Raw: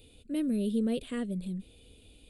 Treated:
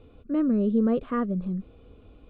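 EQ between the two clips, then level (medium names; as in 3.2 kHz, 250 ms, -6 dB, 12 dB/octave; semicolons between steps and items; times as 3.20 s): resonant low-pass 1.2 kHz, resonance Q 5.2; +6.0 dB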